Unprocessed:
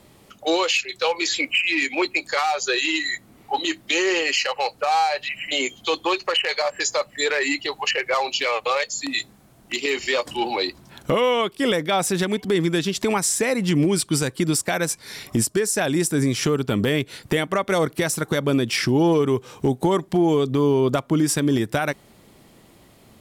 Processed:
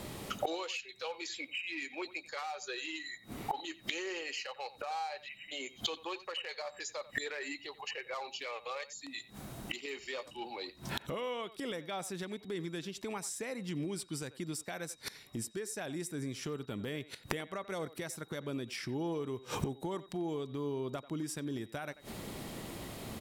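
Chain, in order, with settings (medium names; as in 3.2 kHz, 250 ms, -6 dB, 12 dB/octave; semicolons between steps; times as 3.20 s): inverted gate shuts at -28 dBFS, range -26 dB; speakerphone echo 90 ms, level -16 dB; whistle 3.8 kHz -72 dBFS; trim +7.5 dB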